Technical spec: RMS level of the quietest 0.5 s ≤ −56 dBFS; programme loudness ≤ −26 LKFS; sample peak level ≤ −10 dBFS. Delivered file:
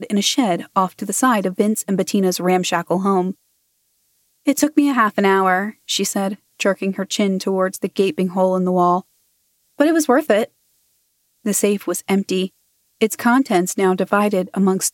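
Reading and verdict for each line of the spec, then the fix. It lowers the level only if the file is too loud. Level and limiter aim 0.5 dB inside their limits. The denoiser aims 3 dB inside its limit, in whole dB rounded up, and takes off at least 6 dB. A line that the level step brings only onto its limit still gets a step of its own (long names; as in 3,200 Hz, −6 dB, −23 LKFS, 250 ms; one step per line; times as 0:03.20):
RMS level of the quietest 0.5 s −66 dBFS: in spec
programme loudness −18.5 LKFS: out of spec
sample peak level −2.0 dBFS: out of spec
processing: level −8 dB
brickwall limiter −10.5 dBFS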